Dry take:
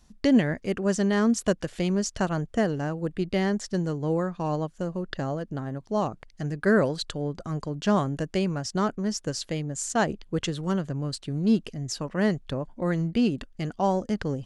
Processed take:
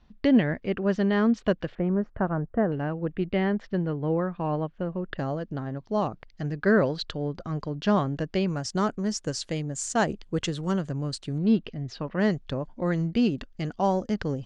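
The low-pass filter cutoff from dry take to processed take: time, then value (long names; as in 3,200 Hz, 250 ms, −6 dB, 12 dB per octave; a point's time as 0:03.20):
low-pass filter 24 dB per octave
3,800 Hz
from 0:01.75 1,600 Hz
from 0:02.72 3,100 Hz
from 0:05.18 5,100 Hz
from 0:08.48 9,100 Hz
from 0:11.38 4,000 Hz
from 0:12.20 6,500 Hz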